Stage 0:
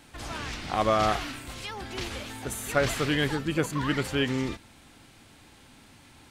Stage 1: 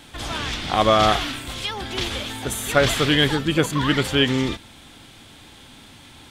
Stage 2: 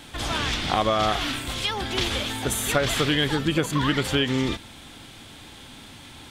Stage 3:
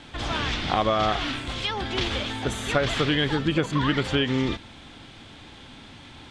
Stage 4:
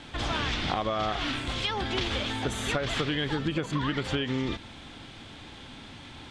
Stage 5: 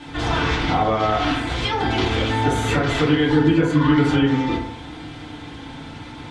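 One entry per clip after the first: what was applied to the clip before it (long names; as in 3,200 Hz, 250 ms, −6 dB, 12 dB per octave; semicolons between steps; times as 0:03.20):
parametric band 3,400 Hz +8.5 dB 0.3 octaves; level +7 dB
downward compressor 6 to 1, threshold −20 dBFS, peak gain reduction 8.5 dB; level +1.5 dB
high-frequency loss of the air 98 metres
downward compressor, threshold −25 dBFS, peak gain reduction 8.5 dB
feedback delay network reverb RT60 0.75 s, low-frequency decay 0.95×, high-frequency decay 0.3×, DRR −8 dB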